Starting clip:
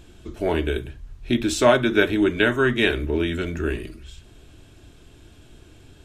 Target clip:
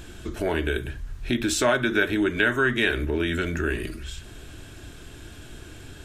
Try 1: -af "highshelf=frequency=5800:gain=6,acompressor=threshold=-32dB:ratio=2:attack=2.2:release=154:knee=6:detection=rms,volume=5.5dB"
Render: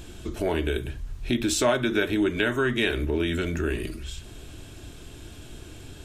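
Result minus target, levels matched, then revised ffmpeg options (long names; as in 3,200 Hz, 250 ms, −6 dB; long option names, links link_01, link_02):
2,000 Hz band −3.5 dB
-af "highshelf=frequency=5800:gain=6,acompressor=threshold=-32dB:ratio=2:attack=2.2:release=154:knee=6:detection=rms,equalizer=frequency=1600:width=2.2:gain=6.5,volume=5.5dB"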